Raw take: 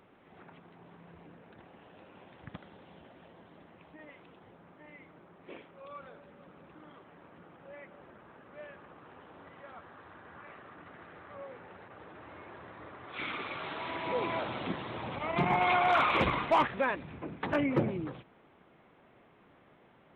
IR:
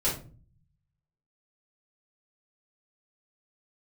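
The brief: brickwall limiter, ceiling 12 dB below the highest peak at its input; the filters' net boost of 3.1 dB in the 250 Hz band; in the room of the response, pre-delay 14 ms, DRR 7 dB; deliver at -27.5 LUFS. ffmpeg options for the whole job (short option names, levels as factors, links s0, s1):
-filter_complex "[0:a]equalizer=f=250:t=o:g=4,alimiter=level_in=1.5:limit=0.0631:level=0:latency=1,volume=0.668,asplit=2[s0][s1];[1:a]atrim=start_sample=2205,adelay=14[s2];[s1][s2]afir=irnorm=-1:irlink=0,volume=0.158[s3];[s0][s3]amix=inputs=2:normalize=0,volume=3.55"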